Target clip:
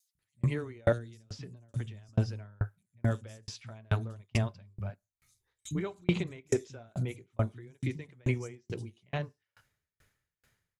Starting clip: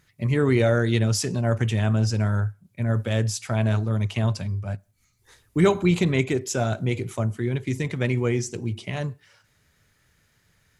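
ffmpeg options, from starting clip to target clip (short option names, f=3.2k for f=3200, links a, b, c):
-filter_complex "[0:a]asettb=1/sr,asplit=3[a][b][c];[a]atrim=end=0.734[d];[b]atrim=start=0.73:end=1.94,asetpts=PTS-STARTPTS,afade=t=in:d=0.004:c=qsin,afade=t=out:st=1.206:d=0.004:c=qsin,acrossover=split=280|4200[e][f][g];[e]acompressor=threshold=-25dB:ratio=4[h];[f]acompressor=threshold=-39dB:ratio=4[i];[g]acompressor=threshold=-41dB:ratio=4[j];[h][i][j]amix=inputs=3:normalize=0[k];[c]atrim=start=1.936[l];[d][k]acrossfade=d=0.004:c1=hsin:c2=qsin[m];[m][l]acrossfade=d=0.004:c1=qsin:c2=hsin,acrossover=split=200|4900[n][o][p];[n]adelay=150[q];[o]adelay=190[r];[q][r][p]amix=inputs=3:normalize=0,aeval=exprs='val(0)*pow(10,-39*if(lt(mod(2.3*n/s,1),2*abs(2.3)/1000),1-mod(2.3*n/s,1)/(2*abs(2.3)/1000),(mod(2.3*n/s,1)-2*abs(2.3)/1000)/(1-2*abs(2.3)/1000))/20)':c=same"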